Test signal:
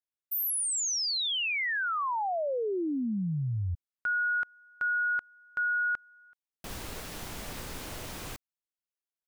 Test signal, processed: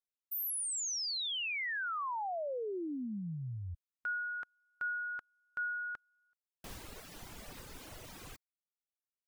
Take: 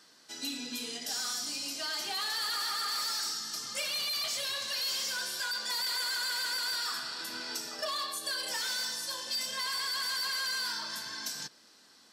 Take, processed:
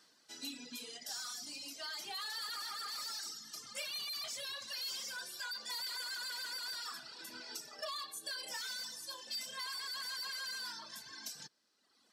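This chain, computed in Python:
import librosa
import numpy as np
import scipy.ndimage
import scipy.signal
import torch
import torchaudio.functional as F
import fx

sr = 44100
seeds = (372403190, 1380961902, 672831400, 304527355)

y = fx.dereverb_blind(x, sr, rt60_s=1.4)
y = F.gain(torch.from_numpy(y), -6.5).numpy()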